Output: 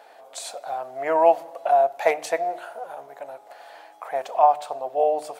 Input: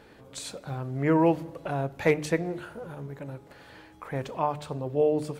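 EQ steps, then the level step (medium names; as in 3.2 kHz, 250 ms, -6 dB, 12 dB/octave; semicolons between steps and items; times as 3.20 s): resonant high-pass 700 Hz, resonance Q 7.8; treble shelf 5.3 kHz +5.5 dB; 0.0 dB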